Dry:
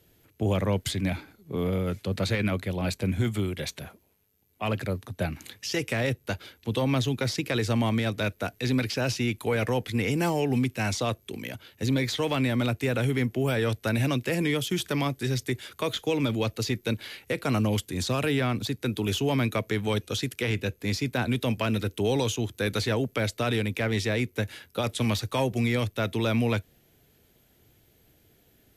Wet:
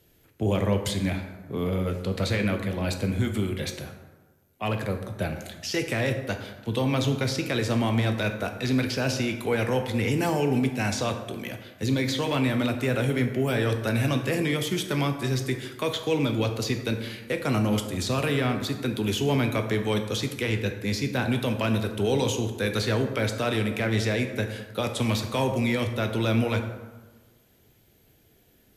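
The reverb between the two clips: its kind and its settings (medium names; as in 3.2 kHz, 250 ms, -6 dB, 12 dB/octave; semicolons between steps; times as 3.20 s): plate-style reverb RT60 1.3 s, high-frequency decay 0.5×, DRR 5 dB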